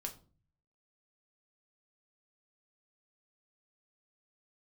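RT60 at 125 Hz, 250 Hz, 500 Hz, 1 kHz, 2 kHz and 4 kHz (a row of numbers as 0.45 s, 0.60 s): 0.85 s, 0.65 s, 0.45 s, 0.35 s, 0.25 s, 0.25 s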